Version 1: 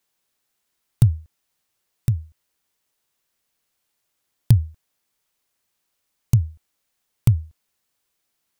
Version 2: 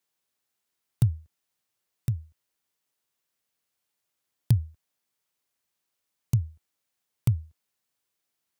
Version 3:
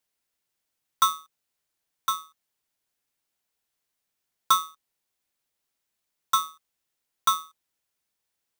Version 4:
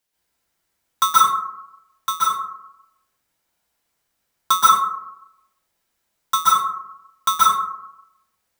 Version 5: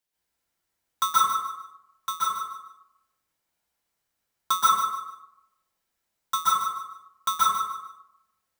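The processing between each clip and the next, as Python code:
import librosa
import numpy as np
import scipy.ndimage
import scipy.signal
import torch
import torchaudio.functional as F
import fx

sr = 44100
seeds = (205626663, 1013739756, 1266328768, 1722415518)

y1 = scipy.signal.sosfilt(scipy.signal.butter(2, 68.0, 'highpass', fs=sr, output='sos'), x)
y1 = F.gain(torch.from_numpy(y1), -6.5).numpy()
y2 = y1 * np.sign(np.sin(2.0 * np.pi * 1200.0 * np.arange(len(y1)) / sr))
y3 = fx.rev_plate(y2, sr, seeds[0], rt60_s=0.82, hf_ratio=0.35, predelay_ms=115, drr_db=-7.5)
y3 = F.gain(torch.from_numpy(y3), 2.5).numpy()
y4 = fx.echo_feedback(y3, sr, ms=149, feedback_pct=27, wet_db=-10)
y4 = F.gain(torch.from_numpy(y4), -7.0).numpy()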